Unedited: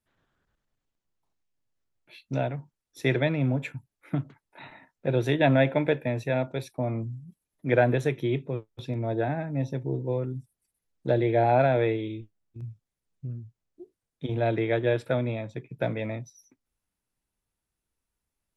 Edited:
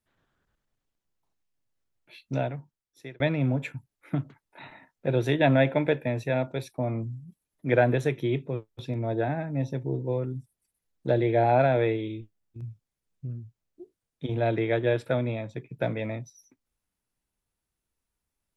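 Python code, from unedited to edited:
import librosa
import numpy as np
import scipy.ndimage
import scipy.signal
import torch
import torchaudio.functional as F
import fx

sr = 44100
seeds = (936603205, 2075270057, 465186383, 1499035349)

y = fx.edit(x, sr, fx.fade_out_span(start_s=2.37, length_s=0.83), tone=tone)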